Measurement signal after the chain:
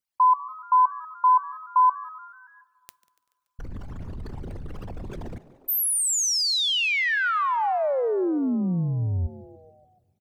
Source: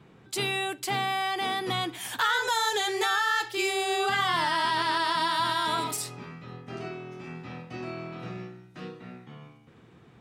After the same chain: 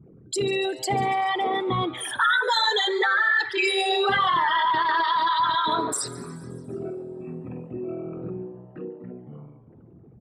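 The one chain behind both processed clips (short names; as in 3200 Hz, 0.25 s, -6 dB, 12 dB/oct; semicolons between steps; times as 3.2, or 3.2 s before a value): formant sharpening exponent 3; frequency-shifting echo 0.143 s, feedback 60%, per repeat +130 Hz, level -20 dB; two-slope reverb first 0.21 s, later 3 s, from -22 dB, DRR 20 dB; warbling echo 0.193 s, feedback 43%, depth 62 cents, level -24 dB; gain +4.5 dB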